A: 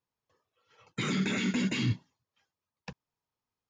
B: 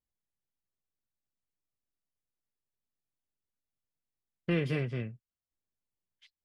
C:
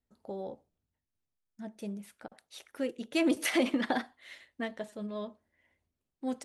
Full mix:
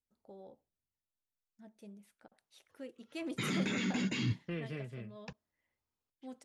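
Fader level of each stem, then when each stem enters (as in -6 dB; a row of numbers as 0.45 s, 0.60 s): -4.5 dB, -10.5 dB, -13.5 dB; 2.40 s, 0.00 s, 0.00 s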